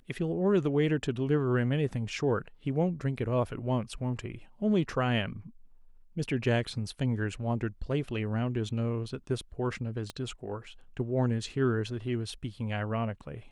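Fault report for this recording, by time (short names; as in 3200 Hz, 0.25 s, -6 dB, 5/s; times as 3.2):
10.1 pop -23 dBFS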